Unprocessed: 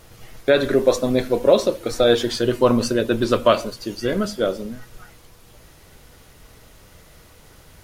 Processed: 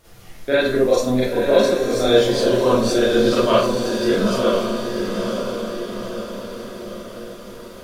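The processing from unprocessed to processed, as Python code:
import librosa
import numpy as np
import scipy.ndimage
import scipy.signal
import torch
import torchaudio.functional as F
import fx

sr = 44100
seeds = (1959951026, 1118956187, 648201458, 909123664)

y = fx.echo_diffused(x, sr, ms=989, feedback_pct=52, wet_db=-4.5)
y = fx.rev_schroeder(y, sr, rt60_s=0.35, comb_ms=32, drr_db=-8.0)
y = y * librosa.db_to_amplitude(-8.0)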